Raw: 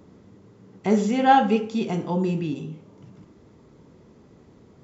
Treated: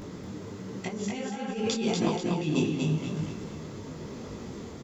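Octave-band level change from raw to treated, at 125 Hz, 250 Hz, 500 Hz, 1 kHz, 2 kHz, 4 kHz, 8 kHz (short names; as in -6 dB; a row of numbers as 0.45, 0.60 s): -0.5 dB, -4.5 dB, -5.5 dB, -16.5 dB, -7.5 dB, +1.5 dB, n/a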